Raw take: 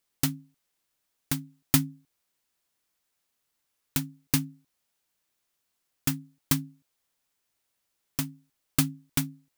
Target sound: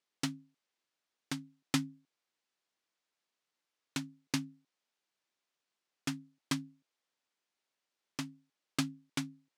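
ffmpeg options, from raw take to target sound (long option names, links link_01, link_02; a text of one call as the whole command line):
ffmpeg -i in.wav -af "highpass=210,lowpass=5700,volume=-4.5dB" out.wav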